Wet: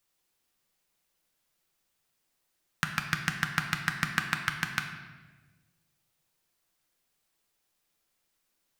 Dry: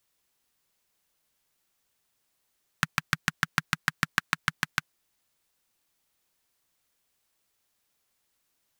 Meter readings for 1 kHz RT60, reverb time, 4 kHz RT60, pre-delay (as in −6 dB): 1.2 s, 1.4 s, 1.0 s, 4 ms